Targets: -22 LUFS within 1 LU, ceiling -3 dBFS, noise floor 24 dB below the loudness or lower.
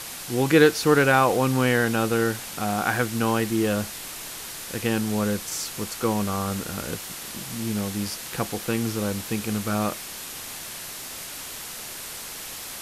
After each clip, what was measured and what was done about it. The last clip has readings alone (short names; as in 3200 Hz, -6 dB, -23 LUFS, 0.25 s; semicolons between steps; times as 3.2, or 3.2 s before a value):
noise floor -37 dBFS; noise floor target -50 dBFS; loudness -25.5 LUFS; peak -4.5 dBFS; loudness target -22.0 LUFS
-> denoiser 13 dB, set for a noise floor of -37 dBFS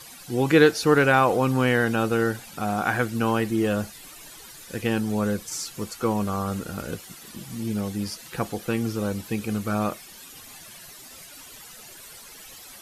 noise floor -45 dBFS; noise floor target -49 dBFS
-> denoiser 6 dB, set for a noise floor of -45 dBFS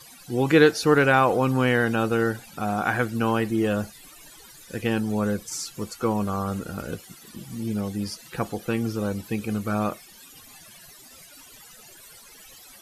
noise floor -49 dBFS; loudness -24.5 LUFS; peak -4.5 dBFS; loudness target -22.0 LUFS
-> gain +2.5 dB; limiter -3 dBFS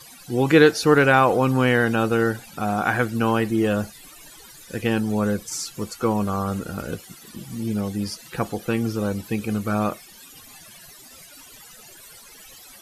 loudness -22.0 LUFS; peak -3.0 dBFS; noise floor -46 dBFS